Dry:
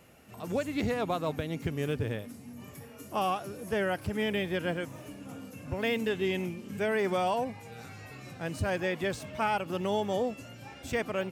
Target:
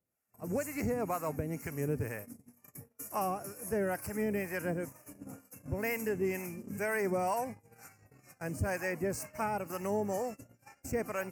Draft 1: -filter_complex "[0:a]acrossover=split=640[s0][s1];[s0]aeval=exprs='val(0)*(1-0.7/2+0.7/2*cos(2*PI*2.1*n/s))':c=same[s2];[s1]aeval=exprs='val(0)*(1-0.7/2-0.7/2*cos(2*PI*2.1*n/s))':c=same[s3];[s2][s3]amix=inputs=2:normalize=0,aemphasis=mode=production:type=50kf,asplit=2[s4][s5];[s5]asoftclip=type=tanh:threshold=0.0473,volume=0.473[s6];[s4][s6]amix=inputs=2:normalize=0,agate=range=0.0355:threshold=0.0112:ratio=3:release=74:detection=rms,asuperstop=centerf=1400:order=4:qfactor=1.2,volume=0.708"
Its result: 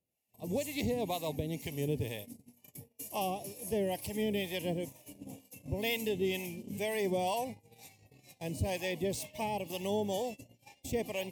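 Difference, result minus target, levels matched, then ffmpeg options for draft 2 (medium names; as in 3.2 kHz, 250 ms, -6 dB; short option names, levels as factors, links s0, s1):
4 kHz band +14.0 dB
-filter_complex "[0:a]acrossover=split=640[s0][s1];[s0]aeval=exprs='val(0)*(1-0.7/2+0.7/2*cos(2*PI*2.1*n/s))':c=same[s2];[s1]aeval=exprs='val(0)*(1-0.7/2-0.7/2*cos(2*PI*2.1*n/s))':c=same[s3];[s2][s3]amix=inputs=2:normalize=0,aemphasis=mode=production:type=50kf,asplit=2[s4][s5];[s5]asoftclip=type=tanh:threshold=0.0473,volume=0.473[s6];[s4][s6]amix=inputs=2:normalize=0,agate=range=0.0355:threshold=0.0112:ratio=3:release=74:detection=rms,asuperstop=centerf=3500:order=4:qfactor=1.2,volume=0.708"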